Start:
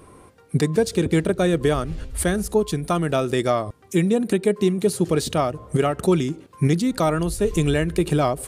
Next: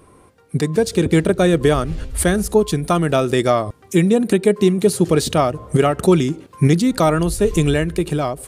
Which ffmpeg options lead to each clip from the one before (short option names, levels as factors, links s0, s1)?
-af "dynaudnorm=f=120:g=13:m=3.76,volume=0.841"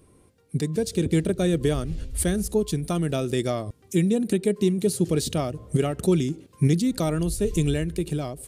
-af "equalizer=f=1100:w=0.65:g=-11,volume=0.562"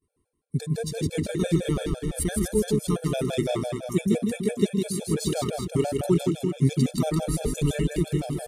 -af "agate=range=0.0224:threshold=0.00562:ratio=3:detection=peak,aecho=1:1:160|368|638.4|989.9|1447:0.631|0.398|0.251|0.158|0.1,afftfilt=real='re*gt(sin(2*PI*5.9*pts/sr)*(1-2*mod(floor(b*sr/1024/450),2)),0)':imag='im*gt(sin(2*PI*5.9*pts/sr)*(1-2*mod(floor(b*sr/1024/450),2)),0)':win_size=1024:overlap=0.75"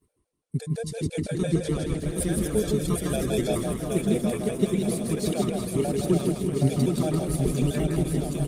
-af "areverse,acompressor=mode=upward:threshold=0.01:ratio=2.5,areverse,aecho=1:1:770|1348|1781|2105|2349:0.631|0.398|0.251|0.158|0.1,volume=0.841" -ar 48000 -c:a libopus -b:a 24k